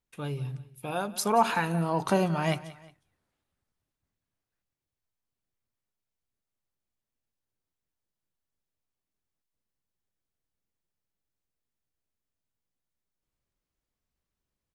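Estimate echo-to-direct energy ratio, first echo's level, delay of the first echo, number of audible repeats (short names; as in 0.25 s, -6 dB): -17.5 dB, -18.0 dB, 0.18 s, 2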